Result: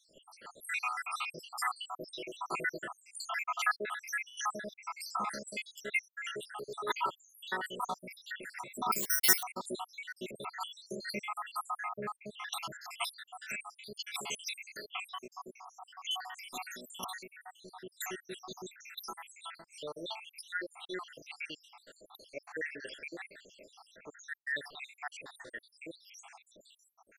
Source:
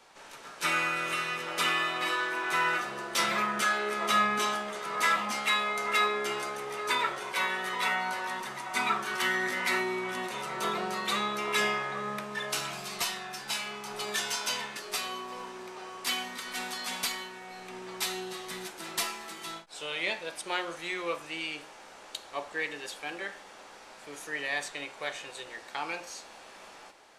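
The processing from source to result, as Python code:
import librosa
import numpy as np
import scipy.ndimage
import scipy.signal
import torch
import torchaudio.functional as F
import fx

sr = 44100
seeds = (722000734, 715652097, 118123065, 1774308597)

y = fx.spec_dropout(x, sr, seeds[0], share_pct=83)
y = fx.resample_bad(y, sr, factor=6, down='none', up='zero_stuff', at=(8.92, 9.43))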